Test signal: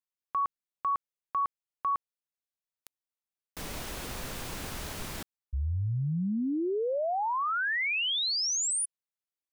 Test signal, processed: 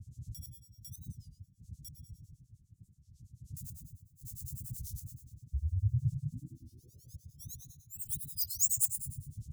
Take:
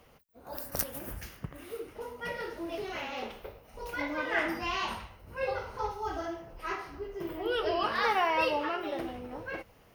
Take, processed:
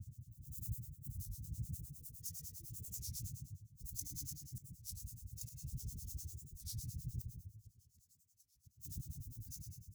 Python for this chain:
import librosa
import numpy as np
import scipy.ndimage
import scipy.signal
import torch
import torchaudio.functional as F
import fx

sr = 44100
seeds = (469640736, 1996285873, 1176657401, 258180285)

y = scipy.signal.medfilt(x, 15)
y = fx.dmg_wind(y, sr, seeds[0], corner_hz=390.0, level_db=-33.0)
y = fx.high_shelf(y, sr, hz=9900.0, db=11.5)
y = fx.gate_flip(y, sr, shuts_db=-22.0, range_db=-34)
y = scipy.signal.sosfilt(scipy.signal.cheby1(3, 1.0, [120.0, 6700.0], 'bandstop', fs=sr, output='sos'), y)
y = fx.high_shelf(y, sr, hz=2700.0, db=8.0)
y = fx.rev_plate(y, sr, seeds[1], rt60_s=1.1, hf_ratio=0.7, predelay_ms=95, drr_db=3.5)
y = fx.harmonic_tremolo(y, sr, hz=9.9, depth_pct=100, crossover_hz=2200.0)
y = scipy.signal.sosfilt(scipy.signal.butter(2, 63.0, 'highpass', fs=sr, output='sos'), y)
y = fx.record_warp(y, sr, rpm=33.33, depth_cents=250.0)
y = y * 10.0 ** (3.5 / 20.0)